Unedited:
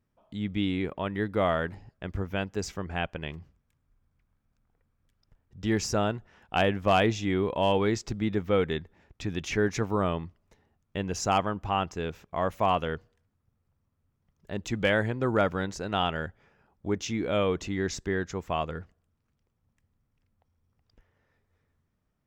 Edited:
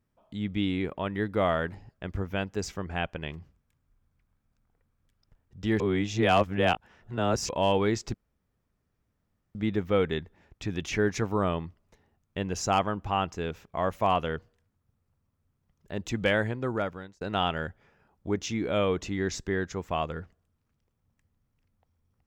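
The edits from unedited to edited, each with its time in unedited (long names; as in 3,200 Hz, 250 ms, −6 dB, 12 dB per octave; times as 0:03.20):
0:05.80–0:07.49: reverse
0:08.14: splice in room tone 1.41 s
0:14.67–0:15.80: fade out equal-power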